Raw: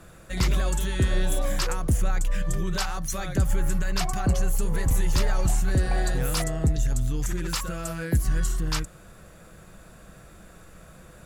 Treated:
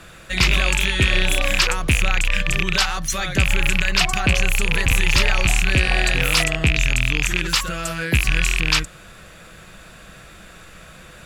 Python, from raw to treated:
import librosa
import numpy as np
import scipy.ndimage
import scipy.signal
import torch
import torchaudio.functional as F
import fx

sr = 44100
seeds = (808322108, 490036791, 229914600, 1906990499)

y = fx.rattle_buzz(x, sr, strikes_db=-24.0, level_db=-19.0)
y = fx.peak_eq(y, sr, hz=2900.0, db=12.0, octaves=2.1)
y = y * librosa.db_to_amplitude(3.0)